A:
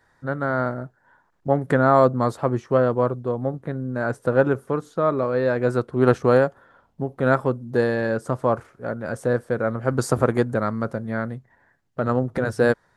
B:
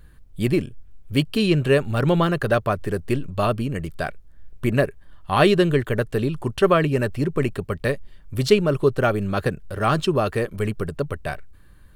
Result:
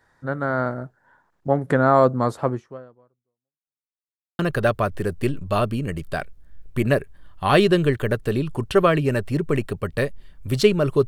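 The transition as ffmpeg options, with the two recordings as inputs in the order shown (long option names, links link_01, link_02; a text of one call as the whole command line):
ffmpeg -i cue0.wav -i cue1.wav -filter_complex "[0:a]apad=whole_dur=11.07,atrim=end=11.07,asplit=2[link_01][link_02];[link_01]atrim=end=3.93,asetpts=PTS-STARTPTS,afade=type=out:start_time=2.49:duration=1.44:curve=exp[link_03];[link_02]atrim=start=3.93:end=4.39,asetpts=PTS-STARTPTS,volume=0[link_04];[1:a]atrim=start=2.26:end=8.94,asetpts=PTS-STARTPTS,afade=type=in:duration=0.004:curve=hsin[link_05];[link_03][link_04][link_05]concat=n=3:v=0:a=1" out.wav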